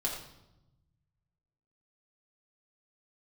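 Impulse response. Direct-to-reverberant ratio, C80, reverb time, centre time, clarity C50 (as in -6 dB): -4.5 dB, 7.0 dB, no single decay rate, 34 ms, 4.5 dB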